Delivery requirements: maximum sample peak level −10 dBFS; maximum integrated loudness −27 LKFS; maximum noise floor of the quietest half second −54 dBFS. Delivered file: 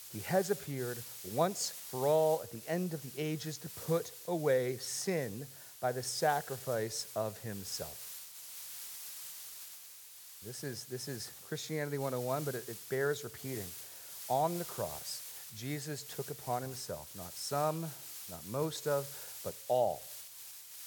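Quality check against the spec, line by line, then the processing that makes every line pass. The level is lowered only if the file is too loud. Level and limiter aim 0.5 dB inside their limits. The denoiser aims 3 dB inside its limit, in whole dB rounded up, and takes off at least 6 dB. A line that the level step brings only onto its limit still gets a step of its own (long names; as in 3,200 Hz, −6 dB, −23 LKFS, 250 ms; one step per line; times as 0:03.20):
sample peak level −16.5 dBFS: in spec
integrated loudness −37.0 LKFS: in spec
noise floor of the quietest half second −53 dBFS: out of spec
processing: broadband denoise 6 dB, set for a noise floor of −53 dBFS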